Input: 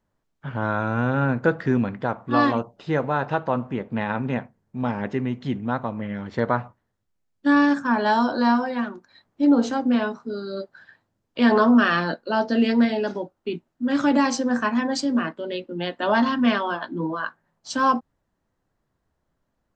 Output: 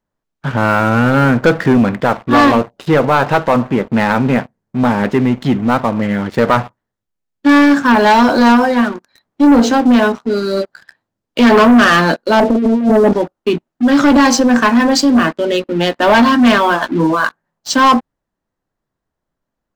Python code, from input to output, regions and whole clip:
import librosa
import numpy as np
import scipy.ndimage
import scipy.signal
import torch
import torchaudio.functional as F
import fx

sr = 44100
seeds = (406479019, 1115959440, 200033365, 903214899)

y = fx.chain(x, sr, fx.lowpass(hz=1000.0, slope=24),
    fx.tilt_eq(slope=-1.5),
    fx.over_compress(threshold_db=-24.0, ratio=-1.0), at=(12.4, 13.13))
y = fx.peak_eq(y, sr, hz=79.0, db=-5.0, octaves=1.4)
y = fx.leveller(y, sr, passes=3)
y = y * librosa.db_to_amplitude(3.5)